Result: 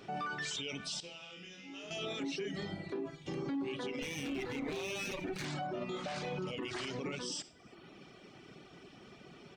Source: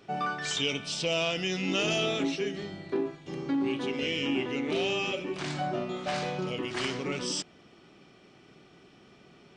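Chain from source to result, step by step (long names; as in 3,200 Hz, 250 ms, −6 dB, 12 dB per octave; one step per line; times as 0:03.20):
0:04.02–0:05.45: lower of the sound and its delayed copy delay 0.48 ms
reverb reduction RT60 0.7 s
downward compressor 2.5 to 1, threshold −33 dBFS, peak gain reduction 6 dB
0:01.00–0:01.91: resonators tuned to a chord C#2 major, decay 0.74 s
convolution reverb RT60 0.50 s, pre-delay 37 ms, DRR 21 dB
brickwall limiter −34 dBFS, peak gain reduction 11.5 dB
slap from a distant wall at 57 metres, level −27 dB
level +3 dB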